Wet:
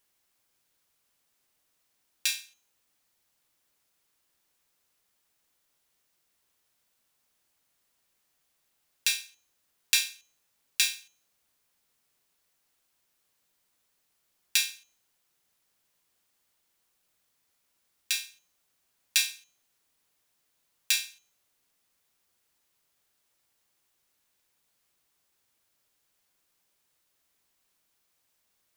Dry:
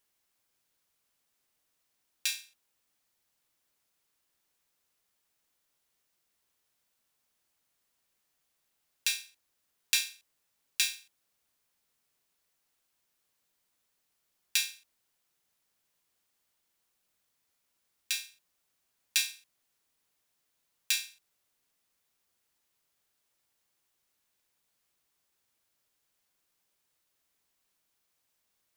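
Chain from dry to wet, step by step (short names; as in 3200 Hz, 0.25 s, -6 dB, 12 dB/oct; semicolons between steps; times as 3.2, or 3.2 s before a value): de-hum 219.5 Hz, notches 31; gain +3.5 dB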